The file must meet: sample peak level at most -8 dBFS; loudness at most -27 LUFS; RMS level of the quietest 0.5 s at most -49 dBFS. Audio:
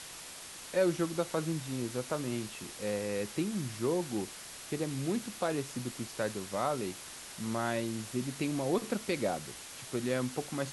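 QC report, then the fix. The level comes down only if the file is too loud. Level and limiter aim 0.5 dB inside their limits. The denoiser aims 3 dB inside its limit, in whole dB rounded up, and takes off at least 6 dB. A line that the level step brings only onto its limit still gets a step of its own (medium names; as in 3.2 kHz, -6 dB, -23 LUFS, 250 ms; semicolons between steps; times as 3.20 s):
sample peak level -18.0 dBFS: pass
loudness -35.0 LUFS: pass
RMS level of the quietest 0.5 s -47 dBFS: fail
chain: noise reduction 6 dB, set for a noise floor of -47 dBFS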